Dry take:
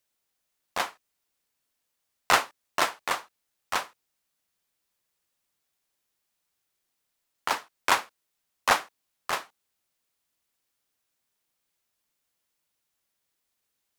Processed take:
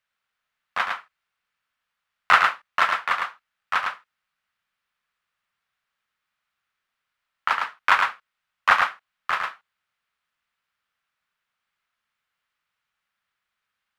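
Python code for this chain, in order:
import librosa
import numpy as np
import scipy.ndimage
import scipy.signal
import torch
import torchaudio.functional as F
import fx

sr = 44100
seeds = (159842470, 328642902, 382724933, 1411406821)

p1 = fx.curve_eq(x, sr, hz=(210.0, 300.0, 890.0, 1300.0, 3000.0, 6400.0, 12000.0), db=(0, -8, 3, 12, 5, -8, -12))
p2 = p1 + fx.echo_single(p1, sr, ms=107, db=-4.5, dry=0)
y = p2 * 10.0 ** (-3.0 / 20.0)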